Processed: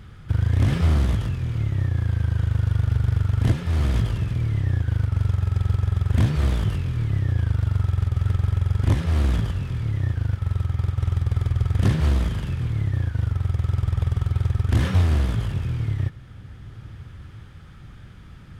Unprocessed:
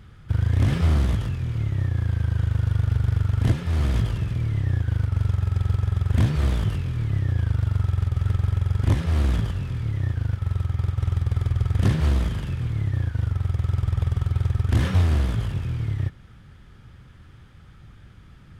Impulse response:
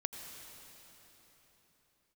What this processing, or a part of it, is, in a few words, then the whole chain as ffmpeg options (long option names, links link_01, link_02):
ducked reverb: -filter_complex "[0:a]asplit=3[link_01][link_02][link_03];[1:a]atrim=start_sample=2205[link_04];[link_02][link_04]afir=irnorm=-1:irlink=0[link_05];[link_03]apad=whole_len=819904[link_06];[link_05][link_06]sidechaincompress=threshold=-33dB:ratio=8:attack=16:release=889,volume=-4dB[link_07];[link_01][link_07]amix=inputs=2:normalize=0"